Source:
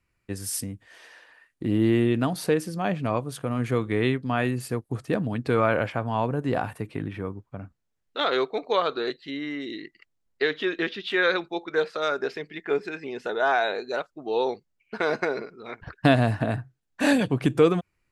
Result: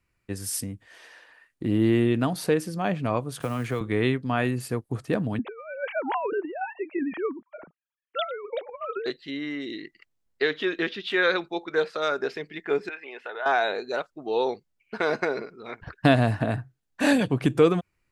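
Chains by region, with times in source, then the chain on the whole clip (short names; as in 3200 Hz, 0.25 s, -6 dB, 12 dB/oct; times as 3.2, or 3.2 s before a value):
3.4–3.81 block floating point 7-bit + bell 210 Hz -4.5 dB 2.4 oct + three-band squash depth 100%
5.39–9.06 sine-wave speech + negative-ratio compressor -29 dBFS, ratio -0.5
12.89–13.46 HPF 650 Hz + resonant high shelf 3900 Hz -13 dB, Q 1.5 + compressor 2:1, threshold -33 dBFS
whole clip: dry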